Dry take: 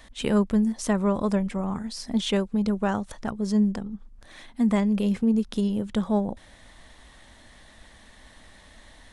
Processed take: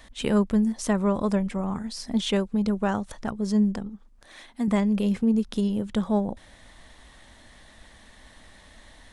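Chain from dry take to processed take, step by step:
0:03.89–0:04.68: bass and treble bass −8 dB, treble +1 dB

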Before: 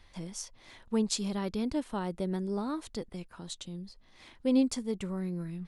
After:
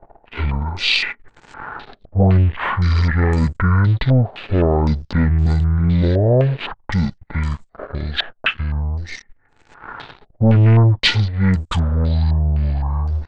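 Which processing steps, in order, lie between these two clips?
leveller curve on the samples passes 3
wrong playback speed 78 rpm record played at 33 rpm
low-pass on a step sequencer 3.9 Hz 680–7,600 Hz
level +8 dB

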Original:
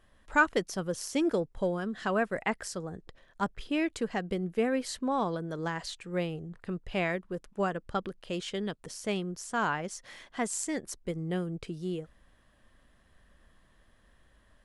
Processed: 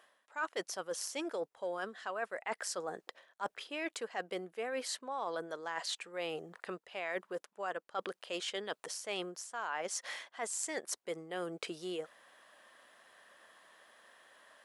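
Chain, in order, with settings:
Chebyshev high-pass filter 660 Hz, order 2
reversed playback
downward compressor 8 to 1, threshold −44 dBFS, peak gain reduction 24.5 dB
reversed playback
level +8.5 dB

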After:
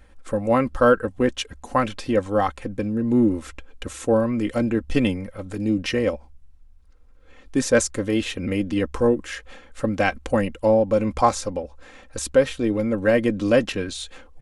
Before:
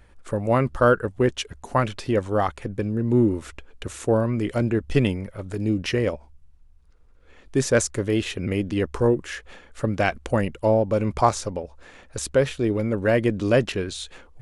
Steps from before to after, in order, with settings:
comb filter 3.8 ms, depth 55%

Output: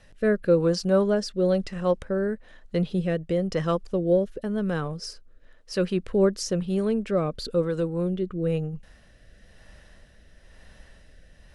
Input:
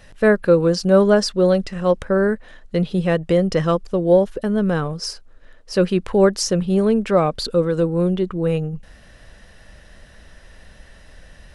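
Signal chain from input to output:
rotating-speaker cabinet horn 1 Hz
level −5 dB

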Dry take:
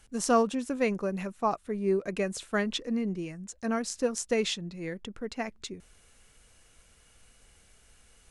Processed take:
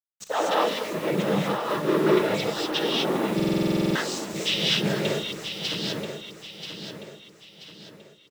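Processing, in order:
volume swells 287 ms
noise reduction from a noise print of the clip's start 12 dB
leveller curve on the samples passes 5
phaser with its sweep stopped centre 1,300 Hz, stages 8
cochlear-implant simulation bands 12
shaped tremolo triangle 5.4 Hz, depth 50%
bit-depth reduction 8 bits, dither none
on a send: repeating echo 983 ms, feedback 40%, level −8.5 dB
on the sum: reverb whose tail is shaped and stops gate 270 ms rising, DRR −4.5 dB
buffer that repeats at 0:03.35, samples 2,048, times 12

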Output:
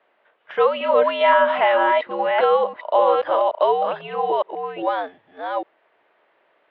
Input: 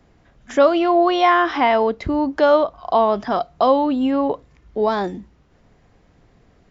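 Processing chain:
delay that plays each chunk backwards 402 ms, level −3 dB
single-sideband voice off tune −93 Hz 600–3,400 Hz

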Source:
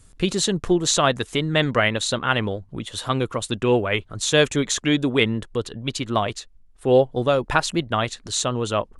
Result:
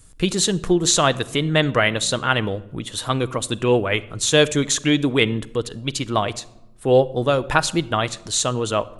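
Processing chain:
high-shelf EQ 9,900 Hz +9 dB
convolution reverb RT60 0.95 s, pre-delay 6 ms, DRR 14 dB
level +1 dB

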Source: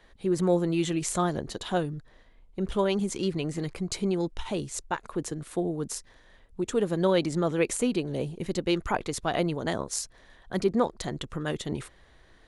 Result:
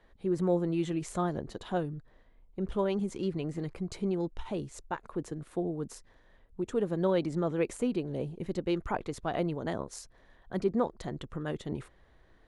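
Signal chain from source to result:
high-shelf EQ 2,400 Hz −11 dB
level −3.5 dB

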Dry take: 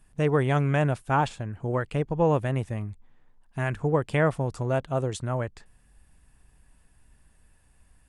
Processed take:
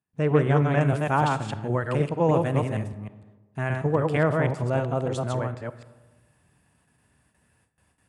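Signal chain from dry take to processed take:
delay that plays each chunk backwards 154 ms, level −2.5 dB
high-pass filter 89 Hz 24 dB per octave
noise gate with hold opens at −54 dBFS
high-shelf EQ 4,300 Hz −9.5 dB, from 0:00.81 +3 dB, from 0:02.88 −4.5 dB
comb and all-pass reverb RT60 1.3 s, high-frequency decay 0.45×, pre-delay 5 ms, DRR 13.5 dB
highs frequency-modulated by the lows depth 0.12 ms

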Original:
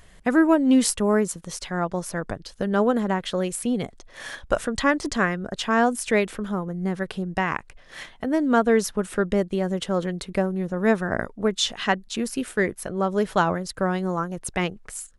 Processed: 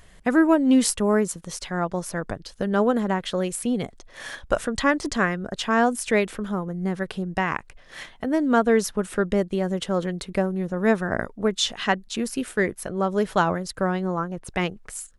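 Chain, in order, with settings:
0:13.90–0:14.48: high-shelf EQ 7,500 Hz → 4,400 Hz −12 dB

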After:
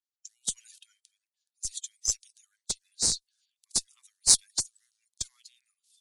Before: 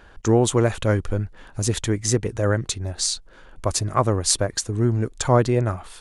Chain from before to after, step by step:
spectral magnitudes quantised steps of 30 dB
inverse Chebyshev high-pass filter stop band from 660 Hz, stop band 80 dB
in parallel at −4 dB: comparator with hysteresis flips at −16.5 dBFS
on the sum: multiband upward and downward expander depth 70%
level −4 dB

